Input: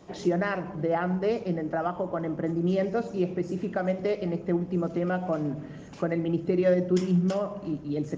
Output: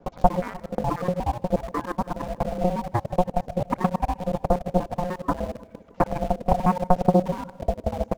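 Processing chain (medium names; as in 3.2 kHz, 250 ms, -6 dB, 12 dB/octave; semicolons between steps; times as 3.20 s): time reversed locally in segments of 60 ms; low-pass 1.3 kHz 6 dB/octave; bass shelf 130 Hz +11 dB; reverb removal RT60 0.96 s; transient shaper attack +11 dB, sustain -1 dB; in parallel at -7.5 dB: bit crusher 5-bit; on the sum: ring modulator 360 Hz; on a send: feedback delay 156 ms, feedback 53%, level -21.5 dB; on the sum: loudspeaker Doppler distortion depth 0.45 ms; trim -2.5 dB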